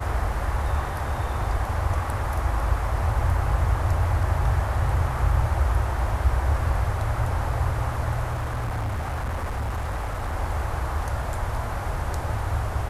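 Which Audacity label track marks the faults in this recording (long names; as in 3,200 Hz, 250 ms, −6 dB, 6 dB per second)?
8.340000	10.350000	clipping −24 dBFS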